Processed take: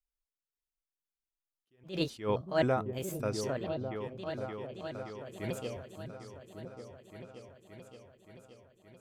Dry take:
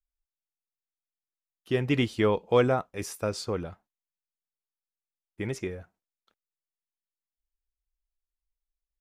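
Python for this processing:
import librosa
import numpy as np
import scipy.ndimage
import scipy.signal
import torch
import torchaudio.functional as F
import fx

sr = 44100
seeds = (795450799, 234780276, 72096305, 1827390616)

y = fx.pitch_trill(x, sr, semitones=4.5, every_ms=262)
y = fx.echo_opening(y, sr, ms=573, hz=200, octaves=2, feedback_pct=70, wet_db=-6)
y = fx.attack_slew(y, sr, db_per_s=190.0)
y = y * 10.0 ** (-4.0 / 20.0)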